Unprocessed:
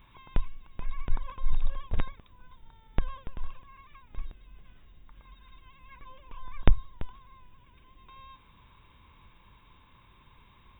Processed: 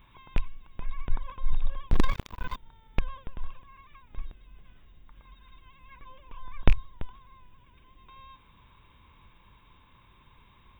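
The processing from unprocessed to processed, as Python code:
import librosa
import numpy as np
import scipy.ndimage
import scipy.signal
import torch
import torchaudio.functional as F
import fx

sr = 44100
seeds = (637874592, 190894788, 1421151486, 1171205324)

y = fx.rattle_buzz(x, sr, strikes_db=-23.0, level_db=-20.0)
y = fx.leveller(y, sr, passes=5, at=(1.91, 2.56))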